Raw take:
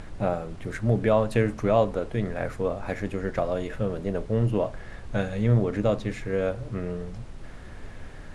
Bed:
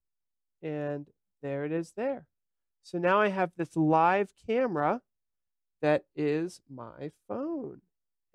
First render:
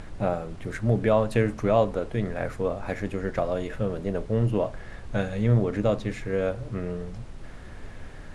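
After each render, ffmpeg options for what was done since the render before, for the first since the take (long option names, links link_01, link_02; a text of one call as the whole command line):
ffmpeg -i in.wav -af anull out.wav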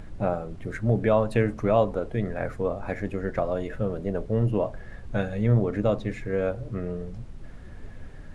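ffmpeg -i in.wav -af "afftdn=noise_reduction=7:noise_floor=-42" out.wav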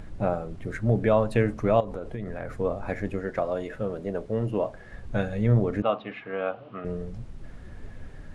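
ffmpeg -i in.wav -filter_complex "[0:a]asettb=1/sr,asplit=3[link_01][link_02][link_03];[link_01]atrim=end=1.804[link_04];[link_02]atrim=start=1.8:end=2.52,asetpts=PTS-STARTPTS,afade=type=in:duration=0.004:curve=qsin,afade=type=out:start_time=0.716:duration=0.004:curve=qsin,acompressor=threshold=-29dB:ratio=6:attack=3.2:release=140:knee=1:detection=peak[link_05];[link_03]atrim=start=2.516[link_06];[link_04][link_05]acrossfade=duration=0.004:curve1=hsin:curve2=qsin[link_07];[link_07][link_06]acrossfade=duration=0.004:curve1=qsin:curve2=hsin,asettb=1/sr,asplit=3[link_08][link_09][link_10];[link_08]atrim=end=3.204[link_11];[link_09]atrim=start=3.2:end=4.93,asetpts=PTS-STARTPTS,afade=type=in:duration=0.004:curve=qsin,afade=type=out:start_time=1.726:duration=0.004:curve=qsin,lowshelf=frequency=140:gain=-10.5[link_12];[link_10]atrim=start=4.926[link_13];[link_11][link_12]acrossfade=duration=0.004:curve1=hsin:curve2=qsin[link_14];[link_14][link_13]acrossfade=duration=0.004:curve1=qsin:curve2=hsin,asettb=1/sr,asplit=3[link_15][link_16][link_17];[link_15]atrim=end=5.824[link_18];[link_16]atrim=start=5.82:end=6.85,asetpts=PTS-STARTPTS,afade=type=in:duration=0.004:curve=qsin,afade=type=out:start_time=1.026:duration=0.004:curve=qsin,highpass=310,equalizer=frequency=360:width_type=q:width=4:gain=-7,equalizer=frequency=510:width_type=q:width=4:gain=-5,equalizer=frequency=750:width_type=q:width=4:gain=7,equalizer=frequency=1200:width_type=q:width=4:gain=9,equalizer=frequency=1900:width_type=q:width=4:gain=-3,equalizer=frequency=2900:width_type=q:width=4:gain=9,lowpass=frequency=3500:width=0.5412,lowpass=frequency=3500:width=1.3066[link_19];[link_17]atrim=start=6.846[link_20];[link_18][link_19]acrossfade=duration=0.004:curve1=hsin:curve2=qsin[link_21];[link_21][link_20]acrossfade=duration=0.004:curve1=qsin:curve2=hsin" out.wav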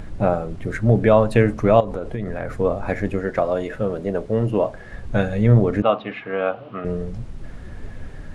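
ffmpeg -i in.wav -af "volume=7dB" out.wav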